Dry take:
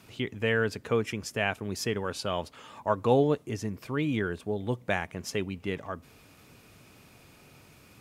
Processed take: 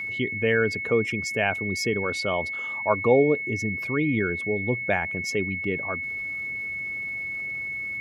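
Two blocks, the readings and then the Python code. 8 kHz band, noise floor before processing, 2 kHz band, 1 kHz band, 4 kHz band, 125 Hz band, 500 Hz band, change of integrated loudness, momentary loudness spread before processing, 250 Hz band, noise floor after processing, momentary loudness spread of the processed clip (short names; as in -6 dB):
+2.5 dB, -57 dBFS, +10.5 dB, +3.0 dB, +2.0 dB, +2.0 dB, +5.0 dB, +5.0 dB, 11 LU, +4.0 dB, -32 dBFS, 7 LU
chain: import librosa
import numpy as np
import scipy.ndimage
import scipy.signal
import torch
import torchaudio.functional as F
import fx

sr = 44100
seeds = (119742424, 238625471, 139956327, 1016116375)

y = fx.envelope_sharpen(x, sr, power=1.5)
y = y + 10.0 ** (-33.0 / 20.0) * np.sin(2.0 * np.pi * 2200.0 * np.arange(len(y)) / sr)
y = F.gain(torch.from_numpy(y), 4.0).numpy()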